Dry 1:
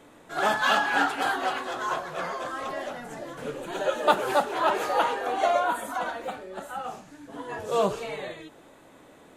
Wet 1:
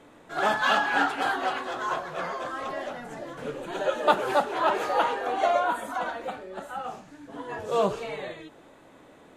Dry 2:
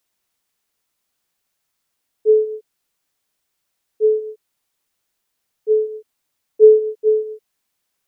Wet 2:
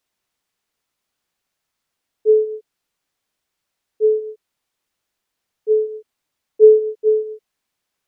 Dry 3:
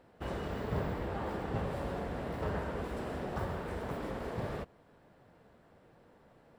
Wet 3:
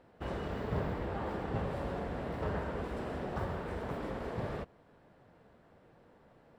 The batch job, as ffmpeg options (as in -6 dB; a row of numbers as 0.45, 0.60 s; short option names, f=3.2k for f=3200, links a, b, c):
-af "highshelf=f=7.5k:g=-8.5"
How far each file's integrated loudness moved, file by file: 0.0, 0.0, 0.0 LU